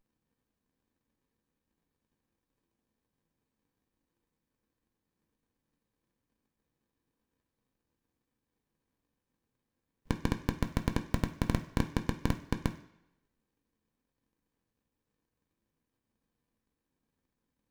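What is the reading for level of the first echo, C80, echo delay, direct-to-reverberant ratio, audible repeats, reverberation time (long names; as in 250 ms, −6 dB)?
no echo audible, 15.5 dB, no echo audible, 4.0 dB, no echo audible, 0.85 s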